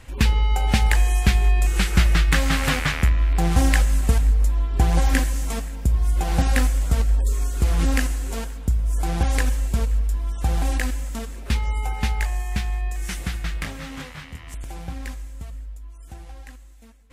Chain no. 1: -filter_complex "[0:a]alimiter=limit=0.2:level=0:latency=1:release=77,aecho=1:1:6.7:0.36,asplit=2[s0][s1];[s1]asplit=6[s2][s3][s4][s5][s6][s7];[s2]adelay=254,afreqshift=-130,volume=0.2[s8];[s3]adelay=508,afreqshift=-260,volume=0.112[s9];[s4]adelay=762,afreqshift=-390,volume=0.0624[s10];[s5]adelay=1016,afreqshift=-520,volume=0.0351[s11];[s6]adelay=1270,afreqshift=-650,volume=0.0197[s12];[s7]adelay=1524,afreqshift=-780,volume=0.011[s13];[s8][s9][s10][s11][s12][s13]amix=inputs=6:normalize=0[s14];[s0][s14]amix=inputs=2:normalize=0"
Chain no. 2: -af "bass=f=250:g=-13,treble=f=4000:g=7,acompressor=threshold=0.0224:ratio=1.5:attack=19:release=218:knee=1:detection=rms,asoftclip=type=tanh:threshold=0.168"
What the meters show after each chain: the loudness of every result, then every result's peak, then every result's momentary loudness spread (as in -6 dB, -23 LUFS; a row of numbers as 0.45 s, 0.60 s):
-26.0 LUFS, -31.5 LUFS; -11.0 dBFS, -15.5 dBFS; 14 LU, 12 LU